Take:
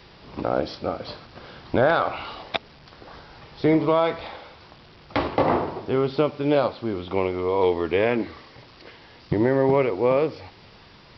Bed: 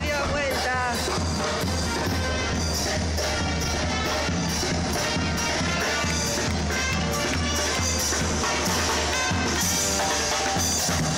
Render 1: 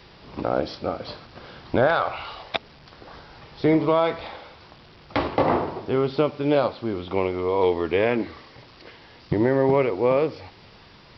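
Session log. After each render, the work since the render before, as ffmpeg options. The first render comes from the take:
-filter_complex "[0:a]asettb=1/sr,asplit=3[a][b][c];[a]atrim=end=1.874[d];[b]atrim=start=1.87:end=2.55,asetpts=PTS-STARTPTS,afade=t=in:d=0.004:c=qsin,afade=t=out:st=0.676:d=0.004:c=qsin,equalizer=f=260:t=o:w=1.1:g=-9[e];[c]atrim=start=2.546[f];[d][e]acrossfade=d=0.004:c1=hsin:c2=qsin[g];[g][f]acrossfade=d=0.004:c1=qsin:c2=hsin"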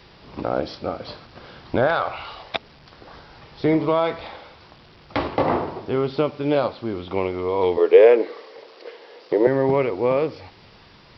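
-filter_complex "[0:a]asettb=1/sr,asplit=3[a][b][c];[a]atrim=end=7.774[d];[b]atrim=start=7.77:end=9.47,asetpts=PTS-STARTPTS,afade=t=in:d=0.004:c=qsin,afade=t=out:st=1.696:d=0.004:c=qsin,highpass=f=460:t=q:w=4.7[e];[c]atrim=start=9.466[f];[d][e]acrossfade=d=0.004:c1=hsin:c2=qsin[g];[g][f]acrossfade=d=0.004:c1=qsin:c2=hsin"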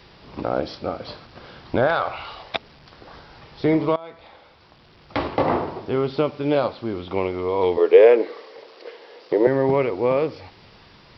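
-filter_complex "[0:a]asplit=2[a][b];[a]atrim=end=3.96,asetpts=PTS-STARTPTS,afade=t=out:st=3.956:d=0.004:c=hsin:silence=0.0891251[c];[b]atrim=start=3.96,asetpts=PTS-STARTPTS,afade=t=in:d=1.34:silence=0.0891251[d];[c][d]concat=n=2:v=0:a=1"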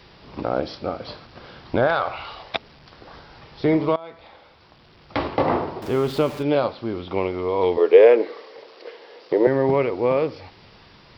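-filter_complex "[0:a]asettb=1/sr,asplit=3[a][b][c];[a]atrim=end=5.824[d];[b]atrim=start=5.82:end=6.43,asetpts=PTS-STARTPTS,afade=t=in:d=0.004:c=qsin,afade=t=out:st=0.606:d=0.004:c=qsin,aeval=exprs='val(0)+0.5*0.0237*sgn(val(0))':c=same[e];[c]atrim=start=6.426[f];[d][e]acrossfade=d=0.004:c1=hsin:c2=qsin[g];[g][f]acrossfade=d=0.004:c1=qsin:c2=hsin"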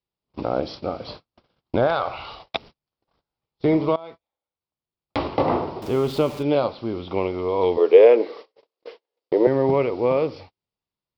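-af "agate=range=-42dB:threshold=-38dB:ratio=16:detection=peak,equalizer=f=1.7k:t=o:w=0.53:g=-7.5"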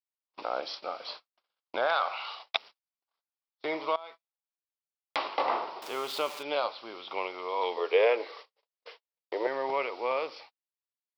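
-af "highpass=980,agate=range=-12dB:threshold=-55dB:ratio=16:detection=peak"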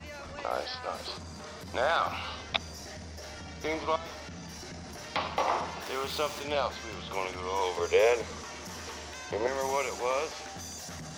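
-filter_complex "[1:a]volume=-18dB[a];[0:a][a]amix=inputs=2:normalize=0"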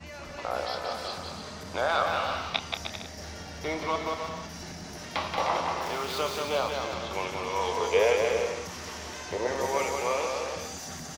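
-filter_complex "[0:a]asplit=2[a][b];[b]adelay=29,volume=-11dB[c];[a][c]amix=inputs=2:normalize=0,aecho=1:1:180|306|394.2|455.9|499.2:0.631|0.398|0.251|0.158|0.1"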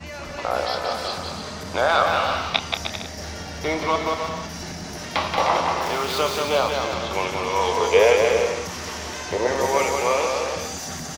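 -af "volume=7.5dB"

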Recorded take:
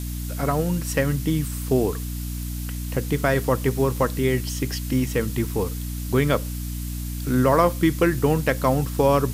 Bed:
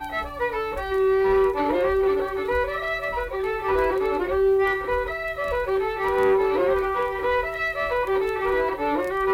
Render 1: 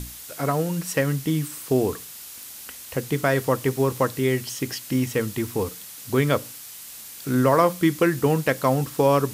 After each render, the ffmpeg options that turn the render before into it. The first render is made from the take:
-af "bandreject=f=60:t=h:w=6,bandreject=f=120:t=h:w=6,bandreject=f=180:t=h:w=6,bandreject=f=240:t=h:w=6,bandreject=f=300:t=h:w=6"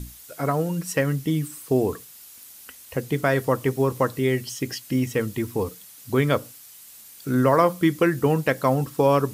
-af "afftdn=nr=8:nf=-40"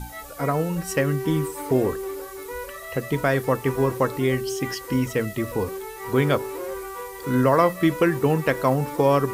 -filter_complex "[1:a]volume=-10.5dB[a];[0:a][a]amix=inputs=2:normalize=0"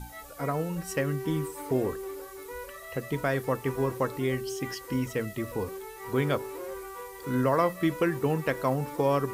-af "volume=-6.5dB"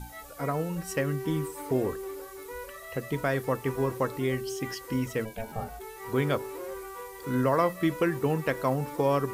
-filter_complex "[0:a]asplit=3[a][b][c];[a]afade=t=out:st=5.24:d=0.02[d];[b]aeval=exprs='val(0)*sin(2*PI*330*n/s)':c=same,afade=t=in:st=5.24:d=0.02,afade=t=out:st=5.79:d=0.02[e];[c]afade=t=in:st=5.79:d=0.02[f];[d][e][f]amix=inputs=3:normalize=0"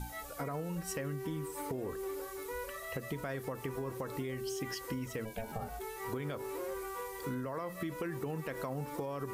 -af "alimiter=limit=-22dB:level=0:latency=1:release=50,acompressor=threshold=-35dB:ratio=6"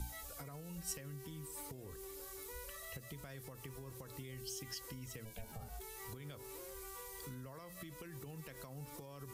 -filter_complex "[0:a]alimiter=level_in=4.5dB:limit=-24dB:level=0:latency=1:release=409,volume=-4.5dB,acrossover=split=120|3000[a][b][c];[b]acompressor=threshold=-58dB:ratio=2.5[d];[a][d][c]amix=inputs=3:normalize=0"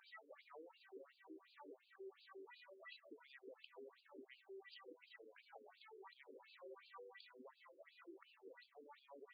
-af "asoftclip=type=tanh:threshold=-39.5dB,afftfilt=real='re*between(b*sr/1024,360*pow(3500/360,0.5+0.5*sin(2*PI*2.8*pts/sr))/1.41,360*pow(3500/360,0.5+0.5*sin(2*PI*2.8*pts/sr))*1.41)':imag='im*between(b*sr/1024,360*pow(3500/360,0.5+0.5*sin(2*PI*2.8*pts/sr))/1.41,360*pow(3500/360,0.5+0.5*sin(2*PI*2.8*pts/sr))*1.41)':win_size=1024:overlap=0.75"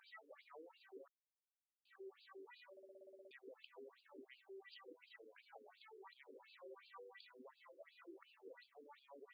-filter_complex "[0:a]asettb=1/sr,asplit=3[a][b][c];[a]atrim=end=7.664[d];[b]atrim=start=7.66:end=8.63,asetpts=PTS-STARTPTS,afade=t=in:d=0.004:c=qsin,afade=t=out:st=0.966:d=0.004:c=qsin,equalizer=f=580:w=1.9:g=4[e];[c]atrim=start=8.626[f];[d][e]acrossfade=d=0.004:c1=hsin:c2=qsin[g];[g][f]acrossfade=d=0.004:c1=qsin:c2=hsin,asplit=13[h][i][j][k][l][m][n][o][p][q][r][s][t];[h]atrim=end=1.08,asetpts=PTS-STARTPTS,afade=t=out:st=1.076:d=0.004:c=hsin[u];[i]atrim=start=1.08:end=1.85,asetpts=PTS-STARTPTS,volume=0[v];[j]atrim=start=1.85:end=2.772,asetpts=PTS-STARTPTS,afade=t=in:d=0.004:c=hsin[w];[k]atrim=start=2.708:end=2.772[x];[l]atrim=start=2.708:end=2.772[y];[m]atrim=start=2.708:end=2.772[z];[n]atrim=start=2.708:end=2.772[aa];[o]atrim=start=2.708:end=2.772[ab];[p]atrim=start=2.708:end=2.772[ac];[q]atrim=start=2.708:end=2.772[ad];[r]atrim=start=2.708:end=2.772[ae];[s]atrim=start=2.708:end=2.772[af];[t]atrim=start=3.308[ag];[u][v][w]concat=n=3:v=0:a=1[ah];[ah][x]acrossfade=d=0.004:c1=hsin:c2=hsin[ai];[ai][y]acrossfade=d=0.004:c1=hsin:c2=hsin[aj];[aj][z]acrossfade=d=0.004:c1=hsin:c2=hsin[ak];[ak][aa]acrossfade=d=0.004:c1=hsin:c2=hsin[al];[al][ab]acrossfade=d=0.004:c1=hsin:c2=hsin[am];[am][ac]acrossfade=d=0.004:c1=hsin:c2=hsin[an];[an][ad]acrossfade=d=0.004:c1=hsin:c2=hsin[ao];[ao][ae]acrossfade=d=0.004:c1=hsin:c2=hsin[ap];[ap][af]acrossfade=d=0.004:c1=hsin:c2=hsin[aq];[aq][ag]acrossfade=d=0.004:c1=hsin:c2=hsin"

